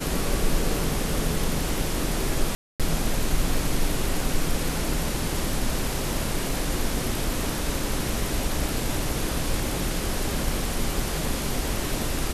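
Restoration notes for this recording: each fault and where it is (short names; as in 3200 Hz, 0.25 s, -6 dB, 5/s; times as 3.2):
2.55–2.8 gap 0.247 s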